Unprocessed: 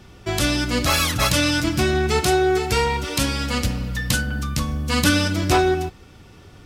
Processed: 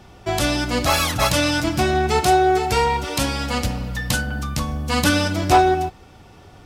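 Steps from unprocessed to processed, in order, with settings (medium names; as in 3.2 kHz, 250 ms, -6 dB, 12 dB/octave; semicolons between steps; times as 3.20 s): peaking EQ 760 Hz +8.5 dB 0.81 oct; trim -1 dB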